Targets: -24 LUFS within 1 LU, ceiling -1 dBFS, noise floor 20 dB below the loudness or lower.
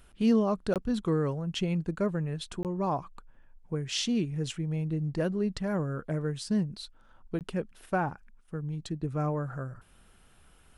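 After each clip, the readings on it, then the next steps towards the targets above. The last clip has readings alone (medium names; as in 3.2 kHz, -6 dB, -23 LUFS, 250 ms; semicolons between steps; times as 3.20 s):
dropouts 3; longest dropout 18 ms; loudness -31.5 LUFS; peak level -14.5 dBFS; loudness target -24.0 LUFS
-> interpolate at 0.74/2.63/7.39 s, 18 ms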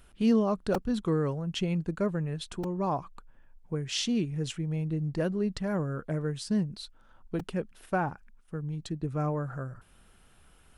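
dropouts 0; loudness -31.5 LUFS; peak level -14.5 dBFS; loudness target -24.0 LUFS
-> trim +7.5 dB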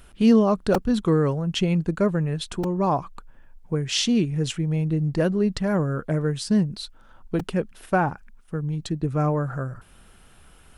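loudness -24.0 LUFS; peak level -7.0 dBFS; noise floor -52 dBFS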